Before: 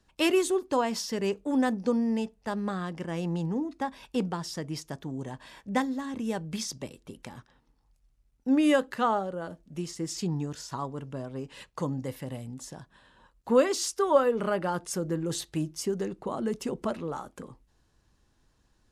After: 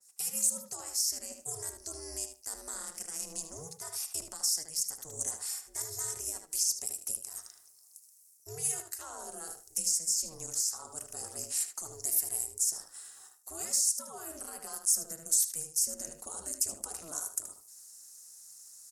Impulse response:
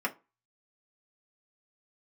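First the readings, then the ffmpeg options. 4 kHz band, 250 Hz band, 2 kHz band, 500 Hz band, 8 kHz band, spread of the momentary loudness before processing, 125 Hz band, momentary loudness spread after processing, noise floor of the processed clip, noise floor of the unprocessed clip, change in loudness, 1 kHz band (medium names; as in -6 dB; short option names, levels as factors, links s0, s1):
-0.5 dB, -26.0 dB, -15.5 dB, -21.0 dB, +12.0 dB, 17 LU, -19.0 dB, 16 LU, -60 dBFS, -69 dBFS, -2.5 dB, -17.0 dB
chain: -filter_complex "[0:a]highpass=170,aemphasis=mode=production:type=riaa,areverse,acompressor=threshold=0.0158:ratio=5,areverse,lowpass=9700,alimiter=level_in=2.66:limit=0.0631:level=0:latency=1:release=196,volume=0.376,aexciter=amount=8.7:drive=9.4:freq=5200,aeval=exprs='val(0)*sin(2*PI*160*n/s)':c=same,asplit=2[s0][s1];[s1]adelay=76,lowpass=f=3900:p=1,volume=0.531,asplit=2[s2][s3];[s3]adelay=76,lowpass=f=3900:p=1,volume=0.17,asplit=2[s4][s5];[s5]adelay=76,lowpass=f=3900:p=1,volume=0.17[s6];[s0][s2][s4][s6]amix=inputs=4:normalize=0,asplit=2[s7][s8];[1:a]atrim=start_sample=2205[s9];[s8][s9]afir=irnorm=-1:irlink=0,volume=0.133[s10];[s7][s10]amix=inputs=2:normalize=0,adynamicequalizer=threshold=0.00708:dfrequency=2400:dqfactor=0.7:tfrequency=2400:tqfactor=0.7:attack=5:release=100:ratio=0.375:range=3.5:mode=cutabove:tftype=highshelf,volume=0.668"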